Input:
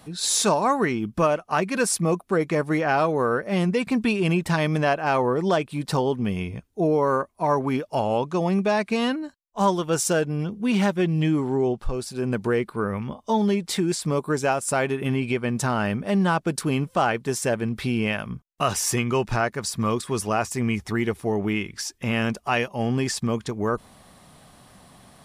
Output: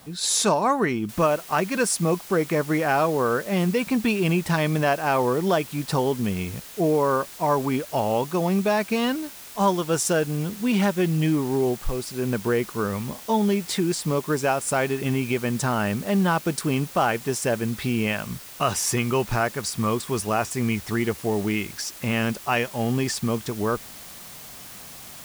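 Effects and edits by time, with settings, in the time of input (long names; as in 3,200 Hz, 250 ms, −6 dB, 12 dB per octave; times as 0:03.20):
0:01.09: noise floor change −55 dB −42 dB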